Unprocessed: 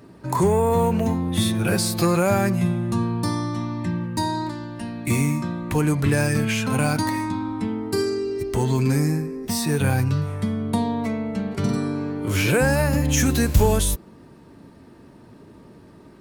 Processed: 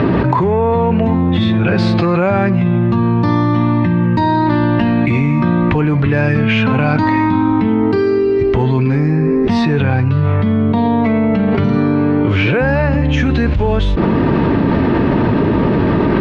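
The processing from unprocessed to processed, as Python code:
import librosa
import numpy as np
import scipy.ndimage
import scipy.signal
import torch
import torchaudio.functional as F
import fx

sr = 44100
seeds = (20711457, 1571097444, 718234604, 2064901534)

y = scipy.signal.sosfilt(scipy.signal.butter(4, 3200.0, 'lowpass', fs=sr, output='sos'), x)
y = fx.env_flatten(y, sr, amount_pct=100)
y = y * librosa.db_to_amplitude(-2.0)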